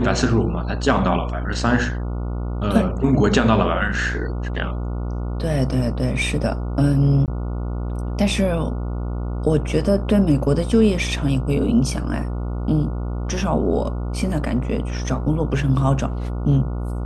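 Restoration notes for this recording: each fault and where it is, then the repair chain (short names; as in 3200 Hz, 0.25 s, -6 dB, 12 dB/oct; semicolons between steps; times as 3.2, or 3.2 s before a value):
buzz 60 Hz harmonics 24 -25 dBFS
7.26–7.28 gap 18 ms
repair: de-hum 60 Hz, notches 24; interpolate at 7.26, 18 ms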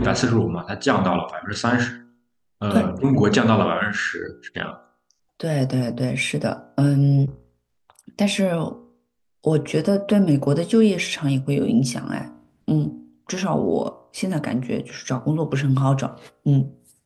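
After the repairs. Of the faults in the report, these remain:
none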